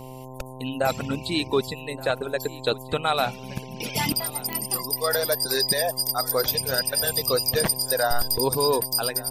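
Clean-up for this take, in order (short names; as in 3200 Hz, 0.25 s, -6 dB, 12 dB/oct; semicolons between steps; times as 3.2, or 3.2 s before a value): de-click; de-hum 129.7 Hz, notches 8; inverse comb 1.171 s -19.5 dB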